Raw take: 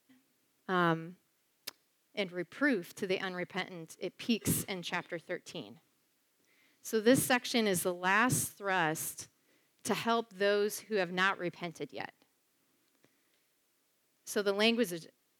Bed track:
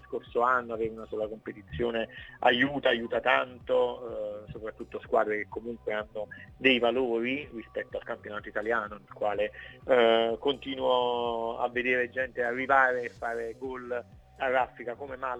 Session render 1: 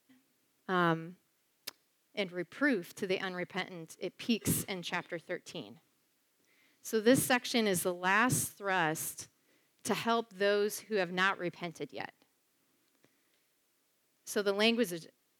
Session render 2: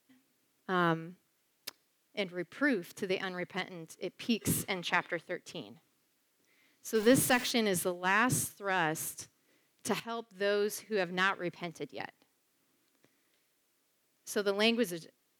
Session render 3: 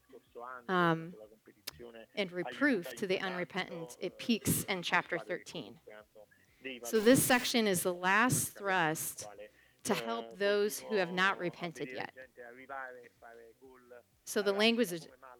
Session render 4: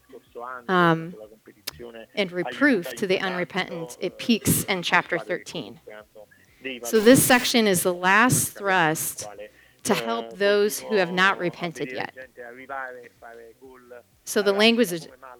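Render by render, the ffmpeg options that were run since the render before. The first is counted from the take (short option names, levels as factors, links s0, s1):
-af anull
-filter_complex "[0:a]asettb=1/sr,asplit=3[s0][s1][s2];[s0]atrim=end=4.694[s3];[s1]atrim=start=4.69:end=5.23,asetpts=PTS-STARTPTS,afade=t=in:d=0.004:c=qsin,afade=t=out:st=0.536:d=0.004:c=qsin,equalizer=f=1300:t=o:w=2.3:g=8[s4];[s2]atrim=start=5.226[s5];[s3][s4]acrossfade=d=0.004:c1=hsin:c2=qsin[s6];[s6][s5]acrossfade=d=0.004:c1=qsin:c2=hsin,asettb=1/sr,asplit=3[s7][s8][s9];[s7]atrim=end=6.954[s10];[s8]atrim=start=6.95:end=7.51,asetpts=PTS-STARTPTS,afade=t=in:d=0.004:c=qsin,afade=t=out:st=0.556:d=0.004:c=qsin,aeval=exprs='val(0)+0.5*0.0188*sgn(val(0))':c=same[s11];[s9]atrim=start=7.506[s12];[s10][s11]acrossfade=d=0.004:c1=hsin:c2=qsin[s13];[s13][s12]acrossfade=d=0.004:c1=qsin:c2=hsin,asplit=2[s14][s15];[s14]atrim=end=10,asetpts=PTS-STARTPTS,afade=t=out:st=9.996:d=0.004:c=hsin:silence=0.211349[s16];[s15]atrim=start=10,asetpts=PTS-STARTPTS,afade=t=in:d=0.6:silence=0.211349[s17];[s16][s17]concat=n=2:v=0:a=1"
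-filter_complex "[1:a]volume=0.0891[s0];[0:a][s0]amix=inputs=2:normalize=0"
-af "volume=3.35"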